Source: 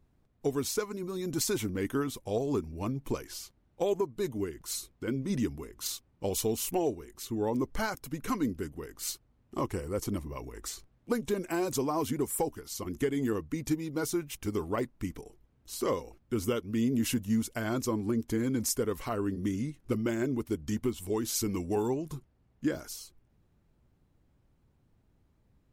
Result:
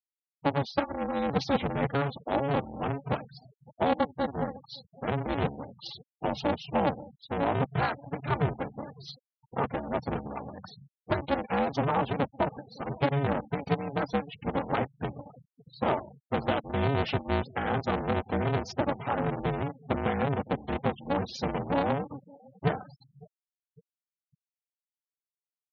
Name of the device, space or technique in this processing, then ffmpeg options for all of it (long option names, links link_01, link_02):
ring modulator pedal into a guitar cabinet: -filter_complex "[0:a]asplit=3[link_01][link_02][link_03];[link_01]afade=type=out:start_time=0.77:duration=0.02[link_04];[link_02]adynamicequalizer=threshold=0.00794:dfrequency=350:dqfactor=4.1:tfrequency=350:tqfactor=4.1:attack=5:release=100:ratio=0.375:range=2.5:mode=boostabove:tftype=bell,afade=type=in:start_time=0.77:duration=0.02,afade=type=out:start_time=1.89:duration=0.02[link_05];[link_03]afade=type=in:start_time=1.89:duration=0.02[link_06];[link_04][link_05][link_06]amix=inputs=3:normalize=0,aeval=exprs='val(0)*sgn(sin(2*PI*140*n/s))':channel_layout=same,highpass=89,equalizer=frequency=130:width_type=q:width=4:gain=5,equalizer=frequency=370:width_type=q:width=4:gain=-5,equalizer=frequency=800:width_type=q:width=4:gain=6,lowpass=frequency=4400:width=0.5412,lowpass=frequency=4400:width=1.3066,asettb=1/sr,asplit=3[link_07][link_08][link_09];[link_07]atrim=end=3.974[link_10];[link_08]atrim=start=3.97:end=4.55,asetpts=PTS-STARTPTS,afade=type=in:duration=0.004:curve=qsin,afade=type=out:start_time=0.576:duration=0.004:curve=qsin,bandreject=frequency=2500:width=5.2[link_11];[link_09]atrim=start=4.546[link_12];[link_10][link_11]acrossfade=duration=0.004:curve1=hsin:curve2=qsin[link_13];[link_13][link_12]acrossfade=duration=0.004:curve1=qsin:curve2=hsin,aecho=1:1:558|1116|1674:0.0708|0.0354|0.0177,afftfilt=real='re*gte(hypot(re,im),0.0112)':imag='im*gte(hypot(re,im),0.0112)':win_size=1024:overlap=0.75,volume=2.5dB"